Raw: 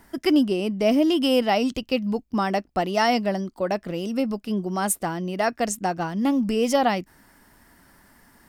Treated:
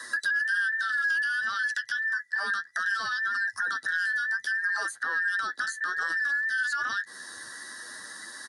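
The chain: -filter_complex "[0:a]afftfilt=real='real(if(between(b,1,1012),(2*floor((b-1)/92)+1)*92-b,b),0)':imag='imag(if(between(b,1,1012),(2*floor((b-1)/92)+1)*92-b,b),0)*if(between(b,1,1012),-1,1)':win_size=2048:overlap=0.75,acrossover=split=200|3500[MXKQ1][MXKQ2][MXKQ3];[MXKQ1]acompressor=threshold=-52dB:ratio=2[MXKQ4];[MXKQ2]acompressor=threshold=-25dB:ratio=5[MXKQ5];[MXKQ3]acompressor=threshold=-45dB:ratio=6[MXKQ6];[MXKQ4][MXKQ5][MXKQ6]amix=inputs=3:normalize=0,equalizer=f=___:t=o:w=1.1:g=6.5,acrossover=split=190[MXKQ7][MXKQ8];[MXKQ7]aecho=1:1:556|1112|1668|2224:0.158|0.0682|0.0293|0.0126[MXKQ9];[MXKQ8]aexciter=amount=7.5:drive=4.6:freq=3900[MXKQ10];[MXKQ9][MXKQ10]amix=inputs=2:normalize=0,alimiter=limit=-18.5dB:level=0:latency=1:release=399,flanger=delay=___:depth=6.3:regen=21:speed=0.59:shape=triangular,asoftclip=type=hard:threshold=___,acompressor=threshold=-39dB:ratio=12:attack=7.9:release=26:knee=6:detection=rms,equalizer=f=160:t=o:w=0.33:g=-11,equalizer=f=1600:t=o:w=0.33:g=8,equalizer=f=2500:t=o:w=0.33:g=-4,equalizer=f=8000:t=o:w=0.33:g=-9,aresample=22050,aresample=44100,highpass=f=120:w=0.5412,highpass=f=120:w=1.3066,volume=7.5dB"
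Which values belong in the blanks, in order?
1600, 7.6, -24dB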